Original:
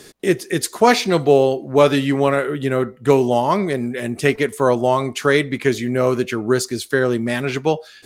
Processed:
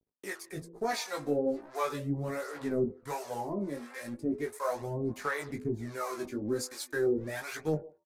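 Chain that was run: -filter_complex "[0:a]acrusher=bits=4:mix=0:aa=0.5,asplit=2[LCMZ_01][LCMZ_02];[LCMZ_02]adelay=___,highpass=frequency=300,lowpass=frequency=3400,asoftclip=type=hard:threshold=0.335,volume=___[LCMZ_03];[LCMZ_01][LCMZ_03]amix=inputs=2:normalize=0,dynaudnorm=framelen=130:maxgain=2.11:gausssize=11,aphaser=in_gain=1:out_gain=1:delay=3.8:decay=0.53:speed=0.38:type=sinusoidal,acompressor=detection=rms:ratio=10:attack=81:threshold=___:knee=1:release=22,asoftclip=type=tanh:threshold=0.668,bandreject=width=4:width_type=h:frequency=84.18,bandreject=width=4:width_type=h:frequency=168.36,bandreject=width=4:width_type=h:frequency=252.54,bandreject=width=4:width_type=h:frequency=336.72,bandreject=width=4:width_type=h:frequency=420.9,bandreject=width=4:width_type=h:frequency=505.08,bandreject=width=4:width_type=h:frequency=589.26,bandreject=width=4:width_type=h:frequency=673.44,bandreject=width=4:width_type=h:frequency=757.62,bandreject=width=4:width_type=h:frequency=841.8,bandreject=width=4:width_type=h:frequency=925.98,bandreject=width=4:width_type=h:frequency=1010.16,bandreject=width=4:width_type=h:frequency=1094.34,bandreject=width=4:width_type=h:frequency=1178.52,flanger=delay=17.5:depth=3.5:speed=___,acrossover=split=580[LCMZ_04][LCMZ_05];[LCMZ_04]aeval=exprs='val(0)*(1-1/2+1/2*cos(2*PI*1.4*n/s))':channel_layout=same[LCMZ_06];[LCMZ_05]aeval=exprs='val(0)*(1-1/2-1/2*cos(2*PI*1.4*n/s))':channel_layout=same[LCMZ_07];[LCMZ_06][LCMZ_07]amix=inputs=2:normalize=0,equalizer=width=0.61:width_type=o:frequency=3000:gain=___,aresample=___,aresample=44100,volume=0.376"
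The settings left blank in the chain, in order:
150, 0.0708, 0.2, 1.2, -11.5, 32000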